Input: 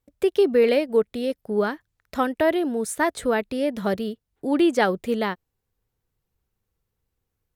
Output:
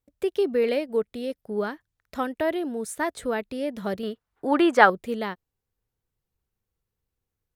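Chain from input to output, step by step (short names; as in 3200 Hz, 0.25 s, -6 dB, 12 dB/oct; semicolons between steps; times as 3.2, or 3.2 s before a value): 4.03–4.9 bell 1200 Hz +15 dB 2.1 oct; gain -5 dB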